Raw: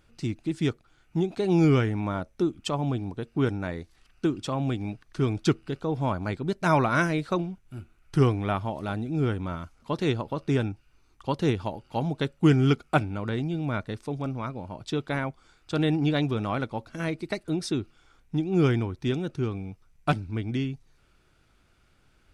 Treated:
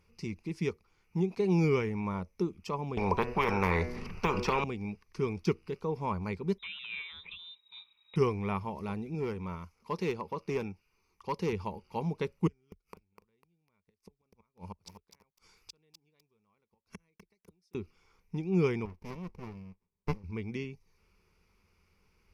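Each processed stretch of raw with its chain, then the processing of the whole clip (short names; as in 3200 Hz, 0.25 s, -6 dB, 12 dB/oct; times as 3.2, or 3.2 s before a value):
2.97–4.64 tilt -4.5 dB/oct + de-hum 122.4 Hz, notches 25 + spectral compressor 10:1
6.58–8.16 compressor, threshold -32 dBFS + inverted band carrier 3800 Hz
9.14–11.53 low shelf 110 Hz -9 dB + hard clip -21 dBFS
12.47–17.75 high shelf 4000 Hz +10 dB + flipped gate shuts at -25 dBFS, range -41 dB + lo-fi delay 0.25 s, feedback 35%, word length 8-bit, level -8 dB
18.85–20.24 HPF 480 Hz 6 dB/oct + high shelf 4000 Hz -8 dB + running maximum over 65 samples
whole clip: de-esser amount 80%; ripple EQ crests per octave 0.83, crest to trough 12 dB; gain -7 dB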